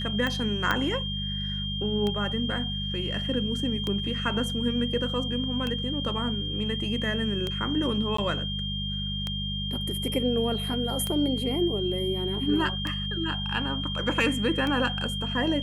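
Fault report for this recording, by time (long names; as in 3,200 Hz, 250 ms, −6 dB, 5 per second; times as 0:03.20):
mains hum 50 Hz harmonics 4 −33 dBFS
scratch tick 33 1/3 rpm −16 dBFS
whistle 3,200 Hz −32 dBFS
0:00.71: click −11 dBFS
0:08.17–0:08.18: drop-out 14 ms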